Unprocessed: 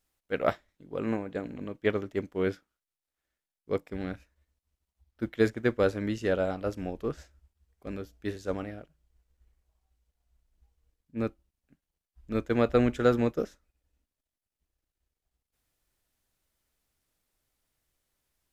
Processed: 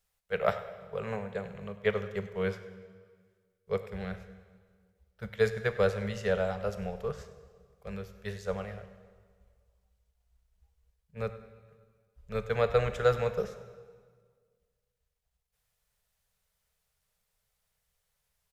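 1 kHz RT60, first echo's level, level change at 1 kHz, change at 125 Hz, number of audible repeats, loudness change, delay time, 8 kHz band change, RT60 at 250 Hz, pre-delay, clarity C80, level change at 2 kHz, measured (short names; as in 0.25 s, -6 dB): 1.7 s, -17.5 dB, 0.0 dB, -0.5 dB, 1, -2.0 dB, 99 ms, n/a, 1.7 s, 19 ms, 12.0 dB, 0.0 dB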